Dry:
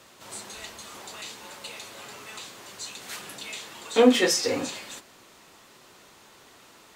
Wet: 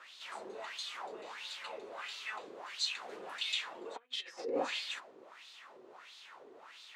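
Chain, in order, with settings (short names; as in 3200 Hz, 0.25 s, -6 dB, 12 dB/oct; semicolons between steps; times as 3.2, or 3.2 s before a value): low shelf 91 Hz -11 dB; negative-ratio compressor -30 dBFS, ratio -0.5; wah 1.5 Hz 390–3900 Hz, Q 3.3; gain +2.5 dB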